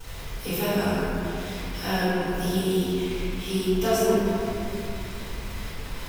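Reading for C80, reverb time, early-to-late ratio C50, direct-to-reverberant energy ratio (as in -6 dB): -2.5 dB, 2.7 s, -5.0 dB, -17.0 dB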